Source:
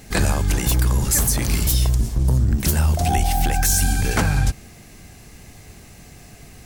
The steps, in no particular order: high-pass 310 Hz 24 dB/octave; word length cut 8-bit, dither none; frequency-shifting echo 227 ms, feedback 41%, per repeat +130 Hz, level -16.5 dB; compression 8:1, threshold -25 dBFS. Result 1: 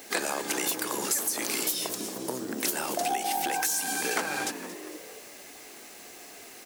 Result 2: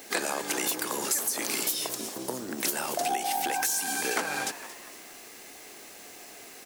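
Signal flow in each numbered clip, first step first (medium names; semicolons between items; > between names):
frequency-shifting echo > high-pass > compression > word length cut; high-pass > word length cut > frequency-shifting echo > compression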